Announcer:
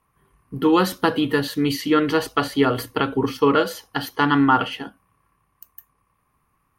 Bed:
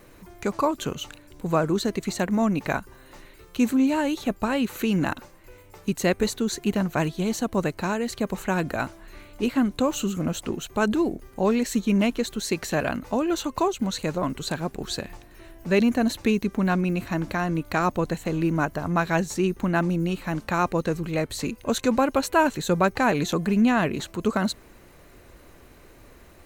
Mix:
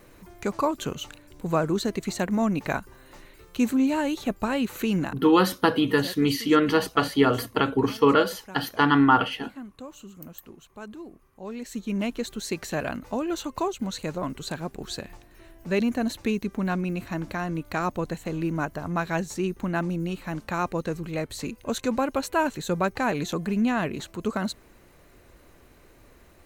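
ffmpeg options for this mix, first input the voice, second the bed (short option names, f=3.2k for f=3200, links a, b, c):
-filter_complex "[0:a]adelay=4600,volume=-1.5dB[a];[1:a]volume=12.5dB,afade=t=out:st=4.97:d=0.22:silence=0.149624,afade=t=in:st=11.4:d=0.85:silence=0.199526[b];[a][b]amix=inputs=2:normalize=0"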